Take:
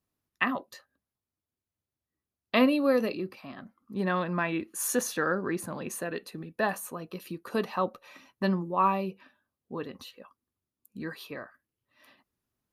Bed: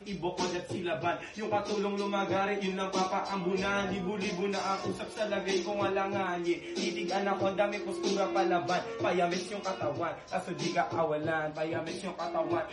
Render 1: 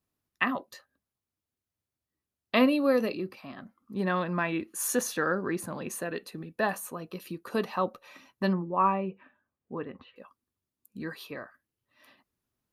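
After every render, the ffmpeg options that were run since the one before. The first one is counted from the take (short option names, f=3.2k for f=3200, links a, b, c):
-filter_complex "[0:a]asettb=1/sr,asplit=3[a][b][c];[a]atrim=end=8.534[d];[b]atrim=start=8.53:end=10.16,asetpts=PTS-STARTPTS,afade=t=in:d=0.004:c=qsin,afade=t=out:st=1.626:d=0.004:c=qsin,lowpass=f=2.5k:w=0.5412,lowpass=f=2.5k:w=1.3066[e];[c]atrim=start=10.156[f];[d][e]acrossfade=d=0.004:c1=hsin:c2=qsin[g];[g][f]acrossfade=d=0.004:c1=qsin:c2=hsin"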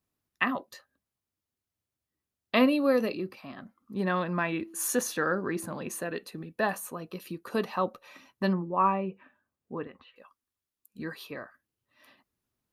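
-filter_complex "[0:a]asettb=1/sr,asplit=3[a][b][c];[a]atrim=end=4.544[d];[b]atrim=start=4.54:end=6.07,asetpts=PTS-STARTPTS,afade=t=in:d=0.004:c=qsin,afade=t=out:st=1.526:d=0.004:c=qsin,bandreject=f=330.6:t=h:w=4,bandreject=f=661.2:t=h:w=4,bandreject=f=991.8:t=h:w=4[e];[c]atrim=start=6.066[f];[d][e]acrossfade=d=0.004:c1=hsin:c2=qsin[g];[g][f]acrossfade=d=0.004:c1=qsin:c2=hsin,asettb=1/sr,asplit=3[h][i][j];[h]atrim=end=9.874[k];[i]atrim=start=9.87:end=10.99,asetpts=PTS-STARTPTS,afade=t=in:d=0.004:c=qsin,afade=t=out:st=1.116:d=0.004:c=qsin,equalizer=f=160:w=0.34:g=-10.5[l];[j]atrim=start=10.986[m];[k][l]acrossfade=d=0.004:c1=hsin:c2=qsin[n];[n][m]acrossfade=d=0.004:c1=qsin:c2=hsin"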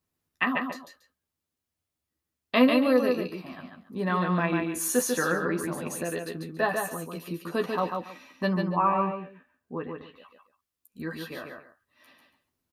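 -filter_complex "[0:a]asplit=2[a][b];[b]adelay=12,volume=-5.5dB[c];[a][c]amix=inputs=2:normalize=0,aecho=1:1:144|281:0.596|0.133"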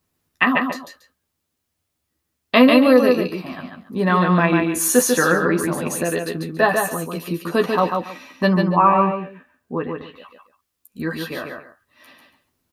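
-af "volume=9.5dB,alimiter=limit=-2dB:level=0:latency=1"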